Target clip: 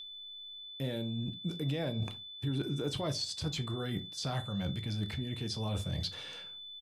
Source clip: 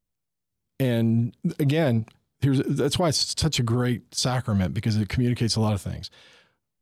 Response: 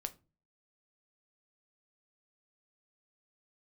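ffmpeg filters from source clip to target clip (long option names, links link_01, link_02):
-filter_complex "[0:a]asplit=2[link_01][link_02];[link_02]adelay=66,lowpass=frequency=830:poles=1,volume=-22.5dB,asplit=2[link_03][link_04];[link_04]adelay=66,lowpass=frequency=830:poles=1,volume=0.41,asplit=2[link_05][link_06];[link_06]adelay=66,lowpass=frequency=830:poles=1,volume=0.41[link_07];[link_01][link_03][link_05][link_07]amix=inputs=4:normalize=0,areverse,acompressor=threshold=-36dB:ratio=16,areverse,aeval=exprs='val(0)+0.00501*sin(2*PI*3500*n/s)':channel_layout=same,acrossover=split=6200[link_08][link_09];[link_09]acompressor=threshold=-53dB:ratio=4:attack=1:release=60[link_10];[link_08][link_10]amix=inputs=2:normalize=0[link_11];[1:a]atrim=start_sample=2205,afade=type=out:start_time=0.14:duration=0.01,atrim=end_sample=6615[link_12];[link_11][link_12]afir=irnorm=-1:irlink=0,volume=6dB"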